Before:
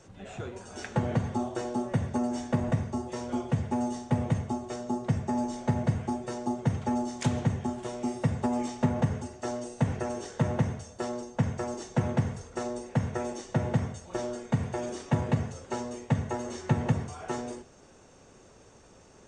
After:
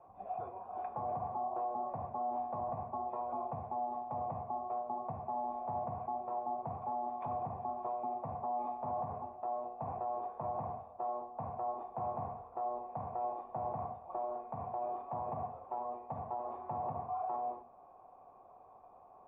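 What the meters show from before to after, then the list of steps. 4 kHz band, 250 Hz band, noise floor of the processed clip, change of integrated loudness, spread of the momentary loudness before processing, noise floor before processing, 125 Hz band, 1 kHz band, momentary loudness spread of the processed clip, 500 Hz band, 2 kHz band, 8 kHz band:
under -35 dB, -20.5 dB, -58 dBFS, -8.5 dB, 7 LU, -55 dBFS, -20.5 dB, +1.5 dB, 5 LU, -6.5 dB, under -20 dB, under -35 dB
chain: cascade formant filter a; peak limiter -41.5 dBFS, peak gain reduction 10.5 dB; hum notches 60/120/180/240 Hz; trim +11.5 dB

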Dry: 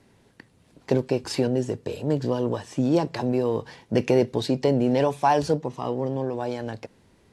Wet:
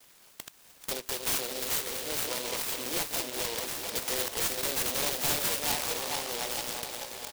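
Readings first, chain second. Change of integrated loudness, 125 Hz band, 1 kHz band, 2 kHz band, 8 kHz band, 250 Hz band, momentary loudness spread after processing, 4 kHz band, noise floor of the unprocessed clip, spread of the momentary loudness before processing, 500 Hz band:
-5.0 dB, -19.5 dB, -9.5 dB, +2.5 dB, +13.5 dB, -18.5 dB, 9 LU, +6.5 dB, -60 dBFS, 9 LU, -13.5 dB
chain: backward echo that repeats 220 ms, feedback 64%, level -5 dB; gate with hold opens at -54 dBFS; high-pass 1.2 kHz 12 dB/octave; peaking EQ 5 kHz +12.5 dB 0.92 oct; in parallel at -2 dB: compression, threshold -38 dBFS, peak gain reduction 19.5 dB; on the sum: integer overflow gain 21.5 dB; delay 867 ms -12.5 dB; delay time shaken by noise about 3.5 kHz, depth 0.2 ms

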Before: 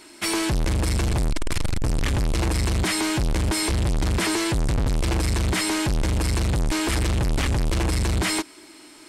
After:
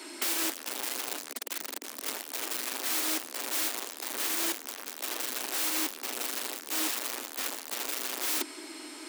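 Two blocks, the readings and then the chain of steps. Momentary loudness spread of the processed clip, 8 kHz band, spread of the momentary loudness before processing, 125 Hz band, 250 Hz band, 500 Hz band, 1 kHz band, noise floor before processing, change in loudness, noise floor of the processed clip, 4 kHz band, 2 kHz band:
8 LU, -2.5 dB, 3 LU, under -40 dB, -16.0 dB, -12.0 dB, -8.5 dB, -47 dBFS, -7.5 dB, -45 dBFS, -5.5 dB, -8.0 dB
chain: integer overflow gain 27 dB; steep high-pass 240 Hz 72 dB/octave; trim +3 dB

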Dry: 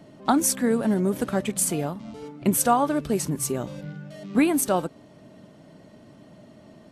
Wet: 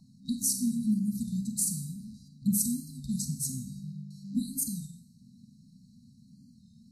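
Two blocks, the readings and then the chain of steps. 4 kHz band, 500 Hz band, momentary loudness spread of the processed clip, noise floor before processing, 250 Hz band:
-6.5 dB, under -40 dB, 14 LU, -51 dBFS, -6.5 dB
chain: FFT band-reject 260–3800 Hz; high-order bell 860 Hz +14.5 dB 1 oct; Schroeder reverb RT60 0.64 s, combs from 30 ms, DRR 7 dB; warped record 33 1/3 rpm, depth 100 cents; trim -5 dB

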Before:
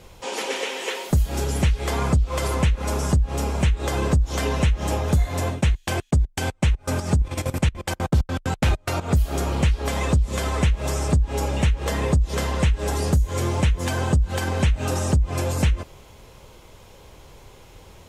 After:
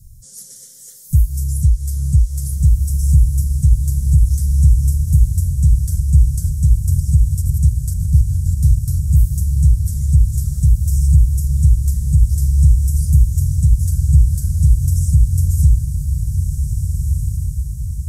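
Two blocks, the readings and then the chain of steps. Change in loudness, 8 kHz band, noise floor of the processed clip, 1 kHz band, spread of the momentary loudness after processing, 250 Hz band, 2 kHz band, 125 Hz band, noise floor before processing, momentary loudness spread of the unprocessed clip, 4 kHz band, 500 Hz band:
+7.0 dB, +3.5 dB, -38 dBFS, under -35 dB, 7 LU, -1.5 dB, under -30 dB, +9.0 dB, -48 dBFS, 4 LU, under -10 dB, under -30 dB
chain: elliptic band-stop 130–5900 Hz, stop band 40 dB; high-order bell 4.4 kHz -10 dB; echo that smears into a reverb 1701 ms, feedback 47%, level -5 dB; trim +8 dB

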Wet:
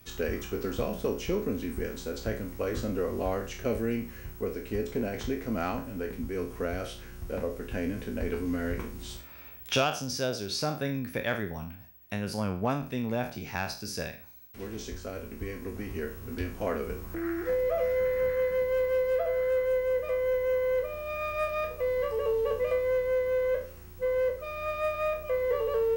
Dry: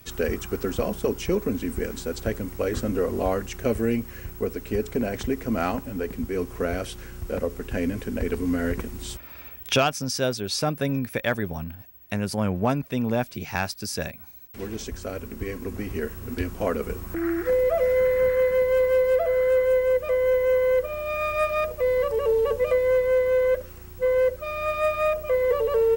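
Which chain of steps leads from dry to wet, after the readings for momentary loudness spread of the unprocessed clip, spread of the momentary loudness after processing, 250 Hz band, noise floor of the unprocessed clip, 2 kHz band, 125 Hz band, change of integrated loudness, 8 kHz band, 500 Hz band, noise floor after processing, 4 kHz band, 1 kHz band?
12 LU, 11 LU, -5.5 dB, -43 dBFS, -5.5 dB, -5.5 dB, -6.0 dB, -6.0 dB, -6.0 dB, -47 dBFS, -4.5 dB, -5.5 dB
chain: spectral sustain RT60 0.40 s; band-stop 7.6 kHz, Q 16; dynamic bell 9.3 kHz, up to -5 dB, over -52 dBFS, Q 1.9; trim -6.5 dB

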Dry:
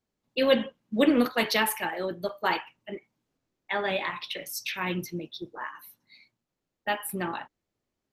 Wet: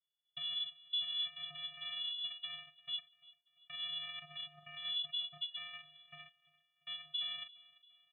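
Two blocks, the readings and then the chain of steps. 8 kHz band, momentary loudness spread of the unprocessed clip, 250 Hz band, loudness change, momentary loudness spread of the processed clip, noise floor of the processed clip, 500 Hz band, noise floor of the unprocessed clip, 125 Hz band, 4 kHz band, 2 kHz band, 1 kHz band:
under -40 dB, 16 LU, under -40 dB, -11.0 dB, 15 LU, -84 dBFS, -38.0 dB, -85 dBFS, -24.5 dB, -0.5 dB, -20.5 dB, -27.0 dB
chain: steep high-pass 160 Hz 36 dB/octave; gate with hold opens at -49 dBFS; comb 5 ms, depth 92%; compression 6:1, threshold -43 dBFS, peak gain reduction 24.5 dB; peak limiter -42 dBFS, peak gain reduction 13 dB; AM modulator 220 Hz, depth 70%; vocoder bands 4, square 273 Hz; on a send: feedback delay 343 ms, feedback 47%, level -21 dB; on the sum: frequency inversion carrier 3.7 kHz; trim +13.5 dB

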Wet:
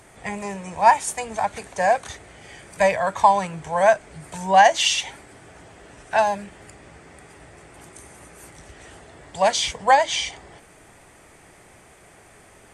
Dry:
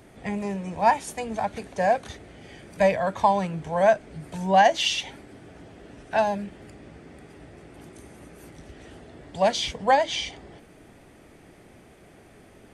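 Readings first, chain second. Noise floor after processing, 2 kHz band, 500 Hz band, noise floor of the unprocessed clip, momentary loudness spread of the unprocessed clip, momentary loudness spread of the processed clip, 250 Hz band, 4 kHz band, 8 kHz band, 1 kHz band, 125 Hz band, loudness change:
-51 dBFS, +5.5 dB, +1.5 dB, -52 dBFS, 14 LU, 16 LU, -4.0 dB, +4.0 dB, +9.0 dB, +4.5 dB, -3.0 dB, +3.5 dB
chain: graphic EQ 250/1000/2000/8000 Hz -6/+6/+4/+12 dB

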